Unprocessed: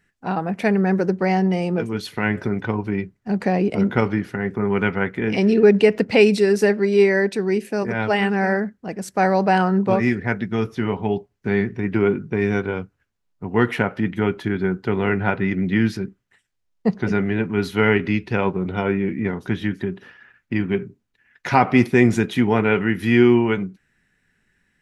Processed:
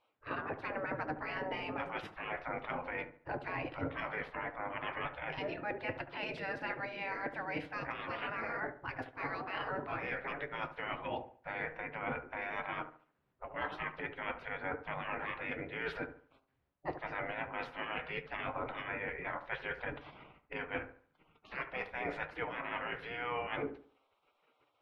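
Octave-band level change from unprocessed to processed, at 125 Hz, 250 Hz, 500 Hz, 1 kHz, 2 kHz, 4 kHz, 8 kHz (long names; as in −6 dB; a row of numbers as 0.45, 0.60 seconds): −25.5 dB, −27.5 dB, −22.0 dB, −14.0 dB, −13.0 dB, −14.5 dB, can't be measured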